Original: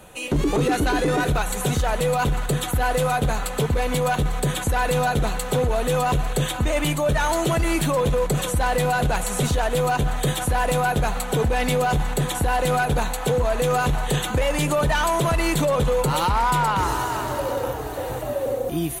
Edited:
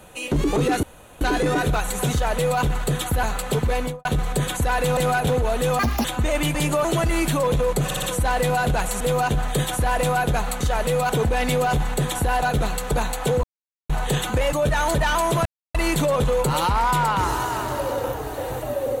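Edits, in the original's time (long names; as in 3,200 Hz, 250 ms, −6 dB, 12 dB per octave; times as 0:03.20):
0:00.83: splice in room tone 0.38 s
0:01.74–0:02.23: duplicate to 0:11.29
0:02.85–0:03.30: remove
0:03.84–0:04.12: fade out and dull
0:05.04–0:05.53: swap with 0:12.62–0:12.92
0:06.05–0:06.46: play speed 161%
0:06.96–0:07.38: swap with 0:14.53–0:14.83
0:08.38: stutter 0.06 s, 4 plays
0:09.36–0:09.69: remove
0:13.44–0:13.90: silence
0:15.34: splice in silence 0.29 s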